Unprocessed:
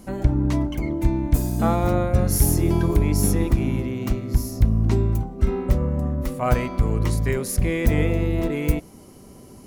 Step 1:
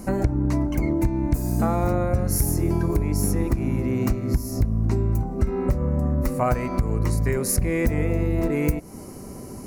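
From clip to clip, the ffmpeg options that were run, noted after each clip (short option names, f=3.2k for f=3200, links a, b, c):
-af "acompressor=threshold=-26dB:ratio=6,equalizer=f=3.3k:w=3.4:g=-14.5,volume=7.5dB"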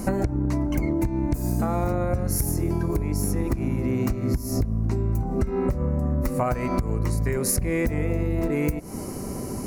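-af "acompressor=threshold=-26dB:ratio=10,volume=6dB"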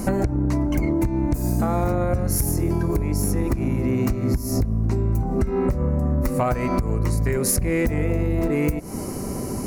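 -af "asoftclip=type=tanh:threshold=-14dB,volume=3.5dB"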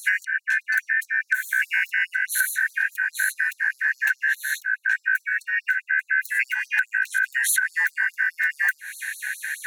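-af "afftfilt=real='real(if(lt(b,272),68*(eq(floor(b/68),0)*1+eq(floor(b/68),1)*0+eq(floor(b/68),2)*3+eq(floor(b/68),3)*2)+mod(b,68),b),0)':imag='imag(if(lt(b,272),68*(eq(floor(b/68),0)*1+eq(floor(b/68),1)*0+eq(floor(b/68),2)*3+eq(floor(b/68),3)*2)+mod(b,68),b),0)':win_size=2048:overlap=0.75,afftfilt=real='re*gte(b*sr/1024,750*pow(4000/750,0.5+0.5*sin(2*PI*4.8*pts/sr)))':imag='im*gte(b*sr/1024,750*pow(4000/750,0.5+0.5*sin(2*PI*4.8*pts/sr)))':win_size=1024:overlap=0.75"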